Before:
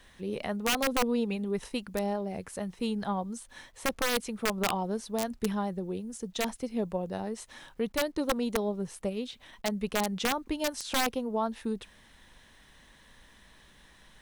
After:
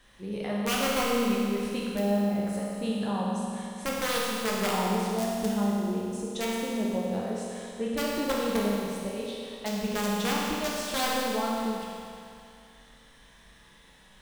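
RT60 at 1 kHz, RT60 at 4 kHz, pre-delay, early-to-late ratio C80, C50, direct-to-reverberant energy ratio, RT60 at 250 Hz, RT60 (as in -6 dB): 2.5 s, 2.5 s, 9 ms, -0.5 dB, -2.0 dB, -5.0 dB, 2.5 s, 2.5 s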